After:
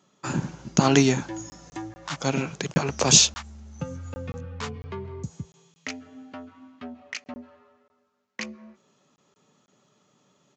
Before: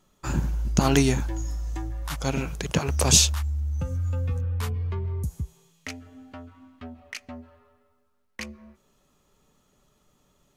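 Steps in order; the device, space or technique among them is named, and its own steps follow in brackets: call with lost packets (high-pass 130 Hz 24 dB/octave; resampled via 16 kHz; lost packets); trim +2.5 dB

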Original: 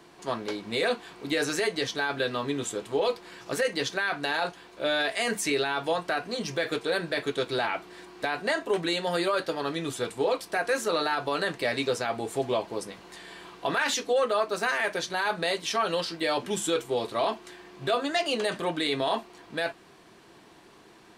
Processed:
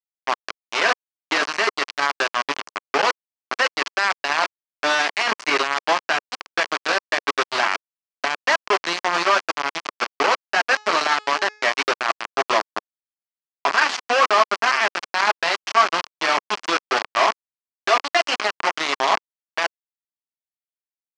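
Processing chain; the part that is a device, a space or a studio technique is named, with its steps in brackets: hand-held game console (bit crusher 4-bit; cabinet simulation 450–5100 Hz, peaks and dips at 490 Hz -9 dB, 1.1 kHz +5 dB, 3.7 kHz -9 dB); 10.63–11.70 s: de-hum 423.6 Hz, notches 20; trim +8.5 dB

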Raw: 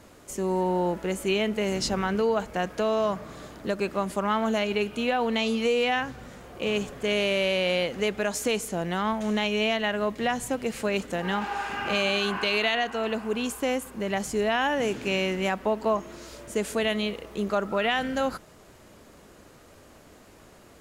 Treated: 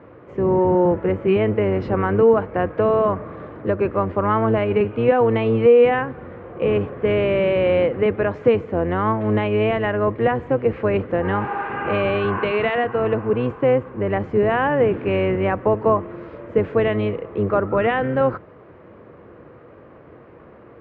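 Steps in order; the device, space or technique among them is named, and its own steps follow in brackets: sub-octave bass pedal (octave divider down 1 oct, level +1 dB; cabinet simulation 77–2200 Hz, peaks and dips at 340 Hz +6 dB, 490 Hz +9 dB, 1.1 kHz +5 dB); trim +3.5 dB

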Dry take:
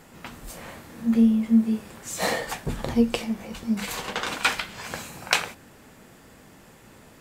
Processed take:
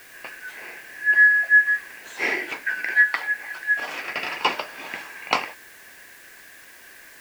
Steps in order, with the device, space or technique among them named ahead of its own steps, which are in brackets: split-band scrambled radio (four frequency bands reordered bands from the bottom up 2143; band-pass 350–3000 Hz; white noise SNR 26 dB); trim +3 dB

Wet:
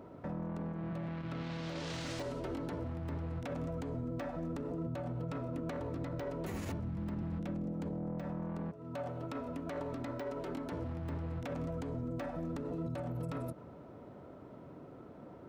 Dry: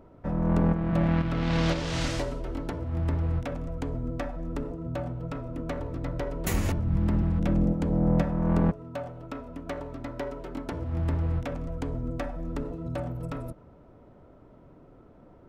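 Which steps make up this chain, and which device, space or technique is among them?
broadcast voice chain (high-pass 110 Hz 12 dB/octave; de-esser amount 95%; compression 3:1, threshold -37 dBFS, peak gain reduction 13 dB; peaking EQ 4.1 kHz +2 dB 0.26 oct; peak limiter -34 dBFS, peak gain reduction 9 dB); trim +3 dB

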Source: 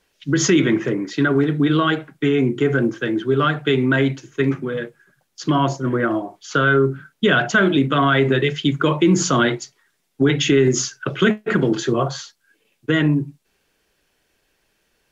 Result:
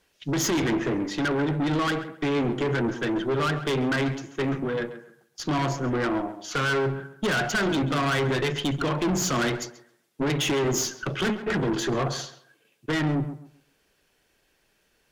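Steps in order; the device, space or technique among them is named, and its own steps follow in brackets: rockabilly slapback (valve stage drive 22 dB, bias 0.4; tape echo 135 ms, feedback 27%, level -10 dB, low-pass 2 kHz)

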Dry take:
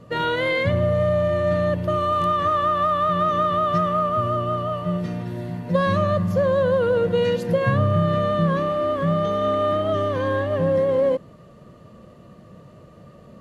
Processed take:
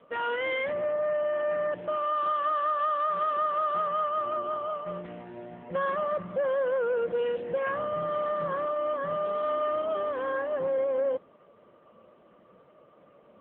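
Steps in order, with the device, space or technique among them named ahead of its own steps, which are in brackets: 3.67–5.36 s: high-pass 54 Hz 12 dB/octave; telephone (band-pass 370–3500 Hz; saturation -16.5 dBFS, distortion -21 dB; trim -4 dB; AMR-NB 6.7 kbps 8 kHz)

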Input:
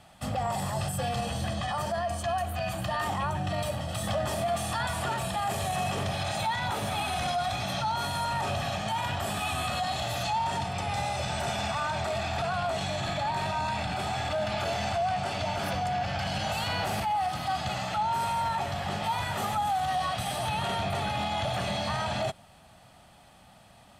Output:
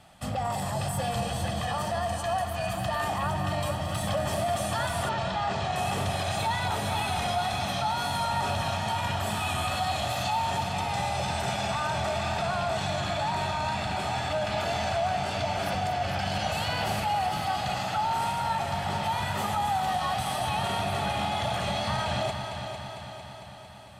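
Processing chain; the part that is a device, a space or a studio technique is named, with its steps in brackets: multi-head tape echo (multi-head delay 226 ms, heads first and second, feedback 65%, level -11 dB; wow and flutter 22 cents); 5.09–5.76 s: low-pass 5.7 kHz 24 dB/octave

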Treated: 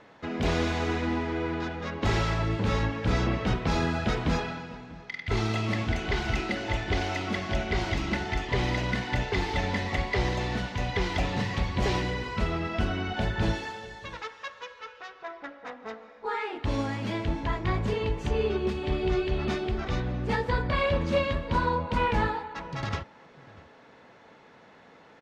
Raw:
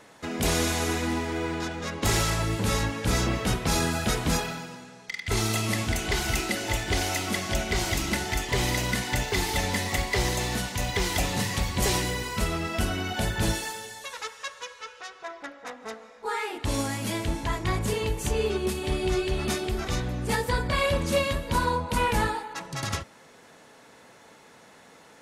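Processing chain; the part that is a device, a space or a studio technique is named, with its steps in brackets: shout across a valley (distance through air 210 m; echo from a far wall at 110 m, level -20 dB)

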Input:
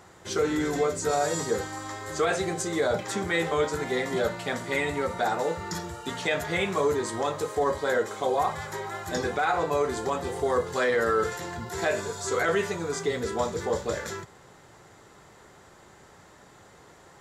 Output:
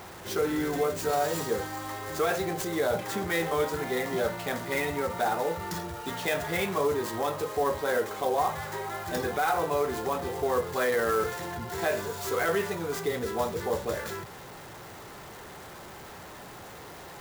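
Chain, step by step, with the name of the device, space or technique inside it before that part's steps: early CD player with a faulty converter (jump at every zero crossing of -38.5 dBFS; sampling jitter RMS 0.027 ms); peaking EQ 790 Hz +2 dB; trim -3 dB

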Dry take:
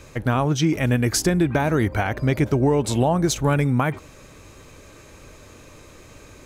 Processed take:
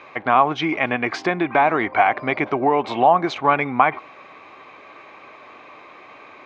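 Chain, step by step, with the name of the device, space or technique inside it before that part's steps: phone earpiece (cabinet simulation 350–3600 Hz, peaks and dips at 500 Hz -4 dB, 750 Hz +10 dB, 1.1 kHz +10 dB, 2.2 kHz +8 dB); trim +2 dB

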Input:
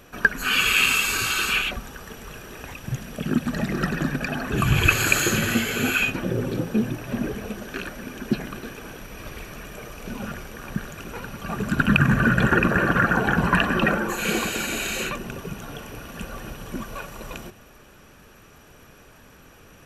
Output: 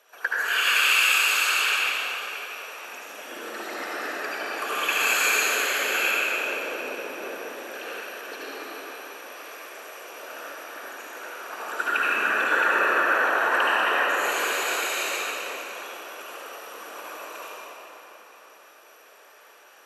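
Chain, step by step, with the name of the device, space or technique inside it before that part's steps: whispering ghost (whisper effect; high-pass 490 Hz 24 dB/octave; reverberation RT60 4.0 s, pre-delay 67 ms, DRR -8.5 dB); trim -8 dB

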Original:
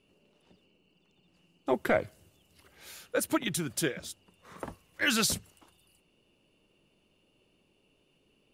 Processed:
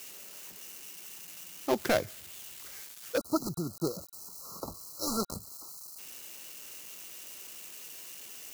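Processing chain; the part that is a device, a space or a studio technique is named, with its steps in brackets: budget class-D amplifier (dead-time distortion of 0.16 ms; zero-crossing glitches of -29.5 dBFS); spectral selection erased 3.18–5.98 s, 1.4–3.9 kHz

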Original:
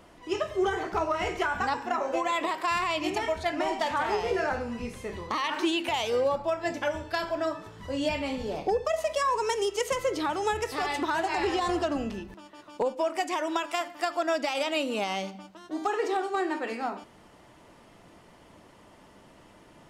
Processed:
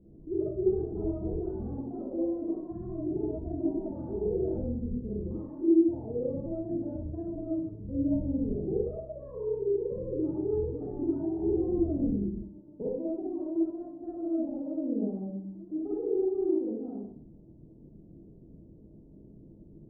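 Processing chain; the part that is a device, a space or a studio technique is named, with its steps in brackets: local Wiener filter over 15 samples; next room (low-pass 340 Hz 24 dB/octave; reverberation RT60 0.55 s, pre-delay 38 ms, DRR -7 dB); 8.50–8.97 s: dynamic bell 750 Hz, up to -4 dB, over -46 dBFS, Q 2.1

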